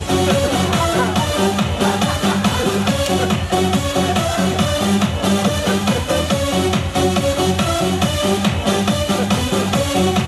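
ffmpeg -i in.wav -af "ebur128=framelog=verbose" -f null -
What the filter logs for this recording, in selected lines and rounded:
Integrated loudness:
  I:         -17.0 LUFS
  Threshold: -27.0 LUFS
Loudness range:
  LRA:         0.3 LU
  Threshold: -37.0 LUFS
  LRA low:   -17.1 LUFS
  LRA high:  -16.9 LUFS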